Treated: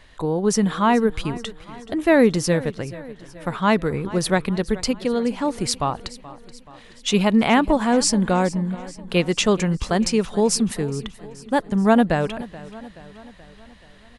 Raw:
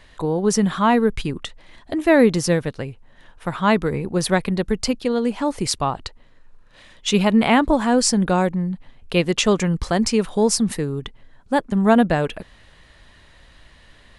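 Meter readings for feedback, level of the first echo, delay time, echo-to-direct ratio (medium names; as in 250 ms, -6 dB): 55%, -18.0 dB, 428 ms, -16.5 dB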